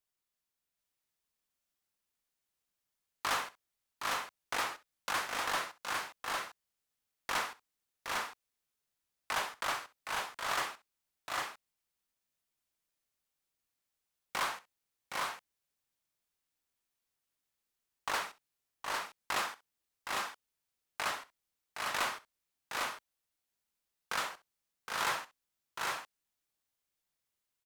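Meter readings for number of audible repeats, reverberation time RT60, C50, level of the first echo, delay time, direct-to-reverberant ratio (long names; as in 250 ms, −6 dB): 3, no reverb audible, no reverb audible, −17.5 dB, 65 ms, no reverb audible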